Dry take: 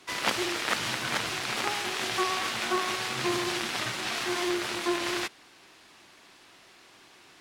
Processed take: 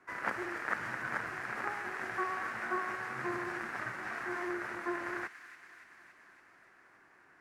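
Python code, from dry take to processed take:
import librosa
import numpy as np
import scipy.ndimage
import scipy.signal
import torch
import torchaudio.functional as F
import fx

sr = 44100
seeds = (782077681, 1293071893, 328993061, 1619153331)

y = fx.high_shelf_res(x, sr, hz=2400.0, db=-12.5, q=3.0)
y = fx.echo_wet_highpass(y, sr, ms=283, feedback_pct=69, hz=2200.0, wet_db=-8.0)
y = y * librosa.db_to_amplitude(-9.0)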